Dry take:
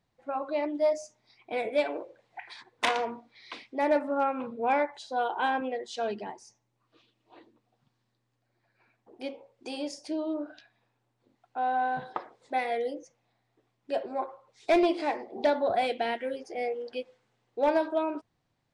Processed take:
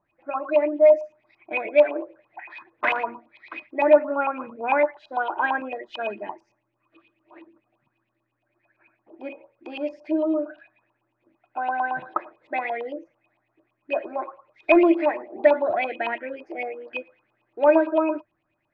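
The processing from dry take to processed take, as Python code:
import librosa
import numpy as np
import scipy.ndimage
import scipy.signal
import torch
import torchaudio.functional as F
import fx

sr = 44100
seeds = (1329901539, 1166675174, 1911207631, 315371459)

y = fx.filter_lfo_lowpass(x, sr, shape='saw_up', hz=8.9, low_hz=920.0, high_hz=3000.0, q=7.3)
y = fx.small_body(y, sr, hz=(330.0, 600.0, 2500.0), ring_ms=100, db=16)
y = y * librosa.db_to_amplitude(-3.5)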